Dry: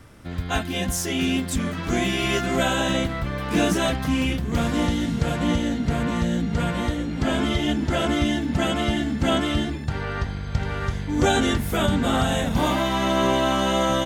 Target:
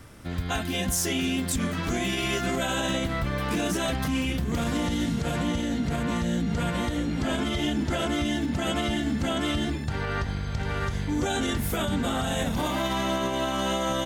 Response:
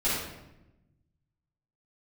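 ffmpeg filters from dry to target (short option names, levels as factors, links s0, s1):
-af "alimiter=limit=0.119:level=0:latency=1:release=72,highshelf=f=5100:g=4.5"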